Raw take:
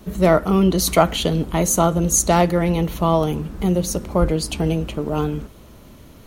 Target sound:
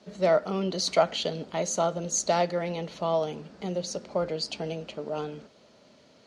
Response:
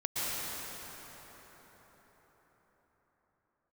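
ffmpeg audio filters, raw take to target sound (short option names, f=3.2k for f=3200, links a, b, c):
-af "highpass=250,equalizer=f=320:t=q:w=4:g=-7,equalizer=f=600:t=q:w=4:g=5,equalizer=f=1.1k:t=q:w=4:g=-5,equalizer=f=4.6k:t=q:w=4:g=8,lowpass=f=6.8k:w=0.5412,lowpass=f=6.8k:w=1.3066,volume=-8.5dB"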